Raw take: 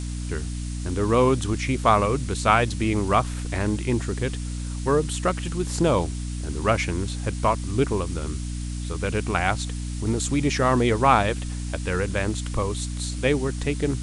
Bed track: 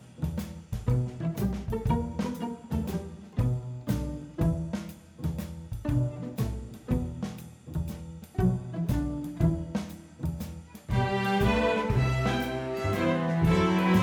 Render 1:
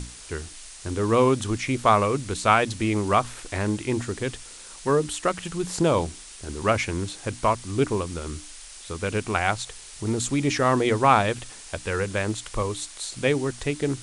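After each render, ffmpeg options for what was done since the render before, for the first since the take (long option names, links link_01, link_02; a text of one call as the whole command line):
ffmpeg -i in.wav -af "bandreject=frequency=60:width_type=h:width=6,bandreject=frequency=120:width_type=h:width=6,bandreject=frequency=180:width_type=h:width=6,bandreject=frequency=240:width_type=h:width=6,bandreject=frequency=300:width_type=h:width=6" out.wav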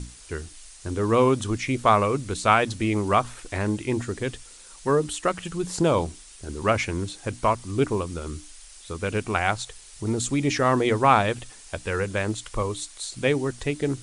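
ffmpeg -i in.wav -af "afftdn=noise_reduction=6:noise_floor=-43" out.wav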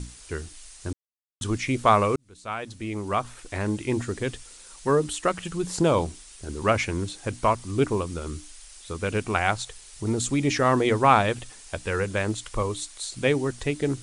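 ffmpeg -i in.wav -filter_complex "[0:a]asplit=4[link_01][link_02][link_03][link_04];[link_01]atrim=end=0.93,asetpts=PTS-STARTPTS,afade=type=out:start_time=0.926:duration=0.004:curve=hsin[link_05];[link_02]atrim=start=0.93:end=1.41,asetpts=PTS-STARTPTS,volume=0[link_06];[link_03]atrim=start=1.41:end=2.16,asetpts=PTS-STARTPTS,afade=type=in:duration=0.004:curve=hsin,afade=type=out:start_time=0.746:duration=0.004:curve=hsin[link_07];[link_04]atrim=start=2.16,asetpts=PTS-STARTPTS,afade=type=in:duration=1.79[link_08];[link_05][link_06][link_07][link_08]concat=n=4:v=0:a=1" out.wav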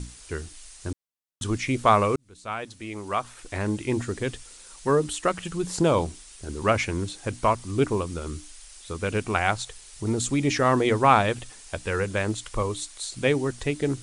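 ffmpeg -i in.wav -filter_complex "[0:a]asettb=1/sr,asplit=3[link_01][link_02][link_03];[link_01]atrim=end=2.664[link_04];[link_02]atrim=start=2.66:end=3.4,asetpts=PTS-STARTPTS,afade=type=in:duration=0.004:curve=qsin,afade=type=out:start_time=0.736:duration=0.004:curve=qsin,lowshelf=frequency=360:gain=-7.5[link_05];[link_03]atrim=start=3.396[link_06];[link_04][link_05]acrossfade=duration=0.004:curve1=hsin:curve2=qsin[link_07];[link_07][link_06]acrossfade=duration=0.004:curve1=qsin:curve2=hsin" out.wav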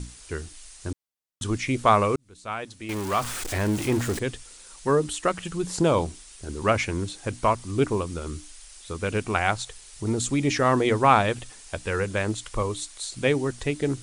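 ffmpeg -i in.wav -filter_complex "[0:a]asettb=1/sr,asplit=3[link_01][link_02][link_03];[link_01]atrim=end=2.894[link_04];[link_02]atrim=start=2.89:end=4.19,asetpts=PTS-STARTPTS,afade=type=in:duration=0.004:curve=qsin,afade=type=out:start_time=1.296:duration=0.004:curve=qsin,aeval=exprs='val(0)+0.5*0.0398*sgn(val(0))':channel_layout=same[link_05];[link_03]atrim=start=4.186[link_06];[link_04][link_05]acrossfade=duration=0.004:curve1=hsin:curve2=qsin[link_07];[link_07][link_06]acrossfade=duration=0.004:curve1=qsin:curve2=hsin" out.wav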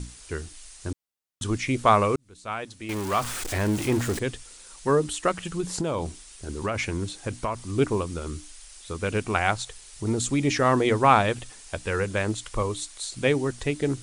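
ffmpeg -i in.wav -filter_complex "[0:a]asettb=1/sr,asplit=3[link_01][link_02][link_03];[link_01]atrim=end=5.604[link_04];[link_02]atrim=start=5.6:end=7.68,asetpts=PTS-STARTPTS,afade=type=in:duration=0.004:curve=qsin,afade=type=out:start_time=2.076:duration=0.004:curve=qsin,acompressor=threshold=-23dB:ratio=6:attack=3.2:release=140:knee=1:detection=peak[link_05];[link_03]atrim=start=7.676[link_06];[link_04][link_05]acrossfade=duration=0.004:curve1=hsin:curve2=qsin[link_07];[link_07][link_06]acrossfade=duration=0.004:curve1=qsin:curve2=hsin" out.wav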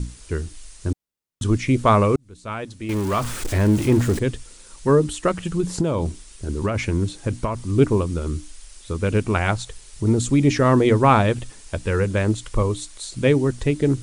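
ffmpeg -i in.wav -af "lowshelf=frequency=470:gain=9.5,bandreject=frequency=750:width=12" out.wav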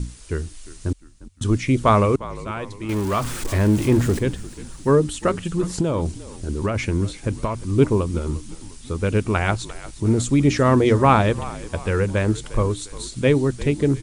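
ffmpeg -i in.wav -filter_complex "[0:a]asplit=5[link_01][link_02][link_03][link_04][link_05];[link_02]adelay=352,afreqshift=-52,volume=-17dB[link_06];[link_03]adelay=704,afreqshift=-104,volume=-23.6dB[link_07];[link_04]adelay=1056,afreqshift=-156,volume=-30.1dB[link_08];[link_05]adelay=1408,afreqshift=-208,volume=-36.7dB[link_09];[link_01][link_06][link_07][link_08][link_09]amix=inputs=5:normalize=0" out.wav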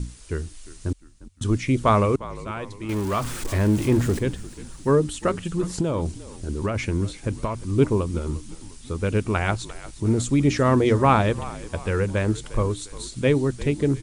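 ffmpeg -i in.wav -af "volume=-2.5dB" out.wav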